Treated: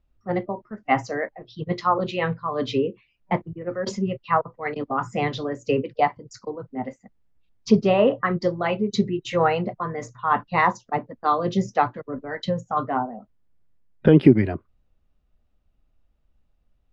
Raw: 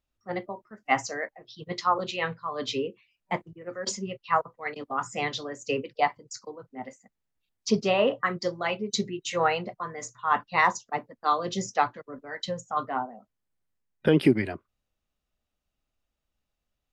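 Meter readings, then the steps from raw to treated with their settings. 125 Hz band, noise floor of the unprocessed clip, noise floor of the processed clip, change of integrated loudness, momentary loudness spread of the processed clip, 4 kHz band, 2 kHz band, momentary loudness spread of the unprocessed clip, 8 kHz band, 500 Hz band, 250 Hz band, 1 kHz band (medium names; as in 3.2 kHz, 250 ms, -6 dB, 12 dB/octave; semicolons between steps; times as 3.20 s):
+10.0 dB, -83 dBFS, -67 dBFS, +4.5 dB, 14 LU, -1.5 dB, +1.0 dB, 16 LU, -7.0 dB, +6.0 dB, +8.0 dB, +3.5 dB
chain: Bessel low-pass 4.7 kHz, order 2; tilt EQ -2.5 dB/octave; in parallel at -3 dB: compression, threshold -30 dBFS, peak gain reduction 19 dB; on the sum: trim +1.5 dB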